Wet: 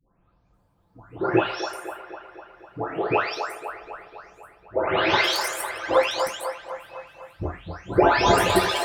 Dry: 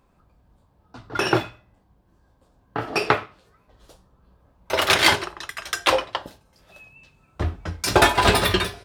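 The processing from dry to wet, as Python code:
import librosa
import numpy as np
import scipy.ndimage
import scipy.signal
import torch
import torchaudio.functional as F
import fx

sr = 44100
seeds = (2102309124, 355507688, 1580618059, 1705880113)

y = fx.spec_delay(x, sr, highs='late', ms=539)
y = fx.dynamic_eq(y, sr, hz=460.0, q=0.88, threshold_db=-36.0, ratio=4.0, max_db=7)
y = fx.echo_wet_bandpass(y, sr, ms=251, feedback_pct=61, hz=1000.0, wet_db=-6.0)
y = y * 10.0 ** (-3.0 / 20.0)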